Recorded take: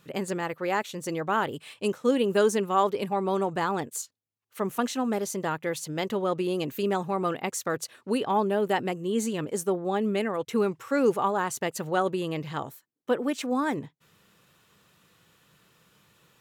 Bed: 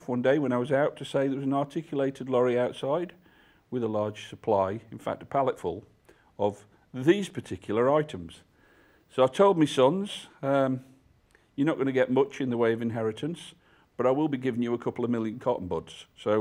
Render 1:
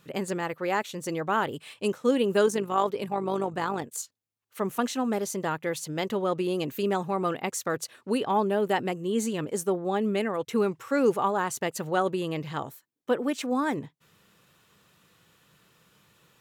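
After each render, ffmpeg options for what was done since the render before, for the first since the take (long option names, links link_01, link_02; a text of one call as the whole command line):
ffmpeg -i in.wav -filter_complex "[0:a]asettb=1/sr,asplit=3[link_01][link_02][link_03];[link_01]atrim=end=2.464[link_04];[link_02]atrim=start=2.46:end=3.98,asetpts=PTS-STARTPTS,afade=type=in:duration=0.004:curve=qsin,afade=type=out:start_time=1.516:duration=0.004:curve=qsin,tremolo=f=50:d=0.462[link_05];[link_03]atrim=start=3.976[link_06];[link_04][link_05]acrossfade=duration=0.004:curve1=hsin:curve2=qsin[link_07];[link_07][link_06]acrossfade=duration=0.004:curve1=qsin:curve2=hsin" out.wav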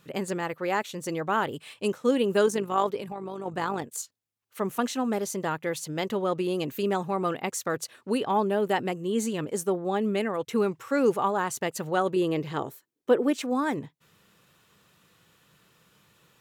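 ffmpeg -i in.wav -filter_complex "[0:a]asplit=3[link_01][link_02][link_03];[link_01]afade=type=out:start_time=3:duration=0.02[link_04];[link_02]acompressor=threshold=-32dB:ratio=6:attack=3.2:release=140:knee=1:detection=peak,afade=type=in:start_time=3:duration=0.02,afade=type=out:start_time=3.45:duration=0.02[link_05];[link_03]afade=type=in:start_time=3.45:duration=0.02[link_06];[link_04][link_05][link_06]amix=inputs=3:normalize=0,asettb=1/sr,asplit=3[link_07][link_08][link_09];[link_07]atrim=end=12.164[link_10];[link_08]atrim=start=12.16:end=13.37,asetpts=PTS-STARTPTS,afade=type=in:duration=0.004:curve=qsin,afade=type=out:start_time=1.206:duration=0.004:curve=qsin,equalizer=frequency=390:width_type=o:width=0.77:gain=8.5[link_11];[link_09]atrim=start=13.366[link_12];[link_10][link_11]acrossfade=duration=0.004:curve1=hsin:curve2=qsin[link_13];[link_13][link_12]acrossfade=duration=0.004:curve1=qsin:curve2=hsin" out.wav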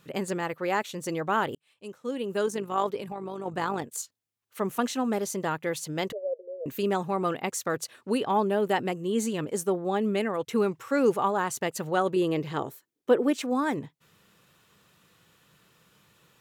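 ffmpeg -i in.wav -filter_complex "[0:a]asettb=1/sr,asplit=3[link_01][link_02][link_03];[link_01]atrim=end=6.124[link_04];[link_02]atrim=start=6.12:end=6.66,asetpts=PTS-STARTPTS,afade=type=in:duration=0.004:curve=qsin,afade=type=out:start_time=0.536:duration=0.004:curve=qsin,asuperpass=centerf=530:order=8:qfactor=2.7[link_05];[link_03]atrim=start=6.656[link_06];[link_04][link_05]acrossfade=duration=0.004:curve1=hsin:curve2=qsin[link_07];[link_07][link_06]acrossfade=duration=0.004:curve1=qsin:curve2=hsin,asplit=2[link_08][link_09];[link_08]atrim=end=1.55,asetpts=PTS-STARTPTS,afade=type=out:start_time=1.546:duration=0.004:curve=hsin[link_10];[link_09]atrim=start=1.55,asetpts=PTS-STARTPTS,afade=type=in:duration=1.58[link_11];[link_10][link_11]concat=n=2:v=0:a=1" out.wav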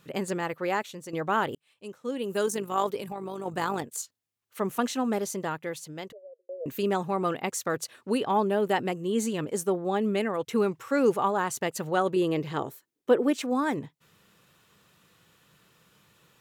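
ffmpeg -i in.wav -filter_complex "[0:a]asettb=1/sr,asplit=3[link_01][link_02][link_03];[link_01]atrim=end=2.224[link_04];[link_02]atrim=start=2.22:end=3.82,asetpts=PTS-STARTPTS,afade=type=in:duration=0.004:curve=qsin,afade=type=out:start_time=1.596:duration=0.004:curve=qsin,highshelf=frequency=7000:gain=11[link_05];[link_03]atrim=start=3.816[link_06];[link_04][link_05]acrossfade=duration=0.004:curve1=hsin:curve2=qsin[link_07];[link_07][link_06]acrossfade=duration=0.004:curve1=qsin:curve2=hsin,asplit=3[link_08][link_09][link_10];[link_08]atrim=end=1.13,asetpts=PTS-STARTPTS,afade=type=out:start_time=0.67:duration=0.46:silence=0.298538[link_11];[link_09]atrim=start=1.13:end=6.49,asetpts=PTS-STARTPTS,afade=type=in:duration=0.004:curve=hsin:silence=0.298538,afade=type=out:start_time=4.04:duration=1.32[link_12];[link_10]atrim=start=6.49,asetpts=PTS-STARTPTS,afade=type=in:duration=0.004:curve=hsin[link_13];[link_11][link_12][link_13]concat=n=3:v=0:a=1" out.wav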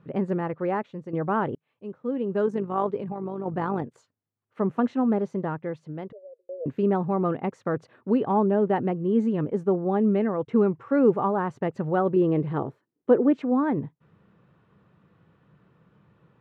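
ffmpeg -i in.wav -af "lowpass=1400,equalizer=frequency=140:width=0.45:gain=7.5" out.wav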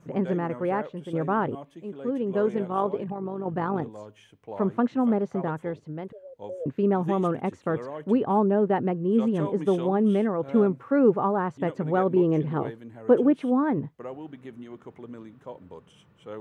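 ffmpeg -i in.wav -i bed.wav -filter_complex "[1:a]volume=-13.5dB[link_01];[0:a][link_01]amix=inputs=2:normalize=0" out.wav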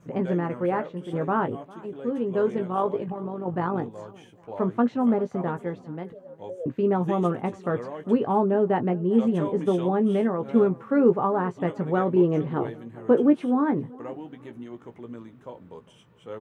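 ffmpeg -i in.wav -filter_complex "[0:a]asplit=2[link_01][link_02];[link_02]adelay=17,volume=-8dB[link_03];[link_01][link_03]amix=inputs=2:normalize=0,aecho=1:1:402|804|1206:0.0794|0.0302|0.0115" out.wav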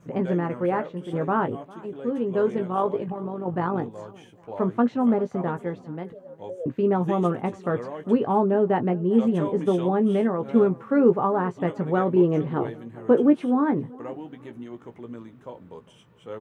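ffmpeg -i in.wav -af "volume=1dB" out.wav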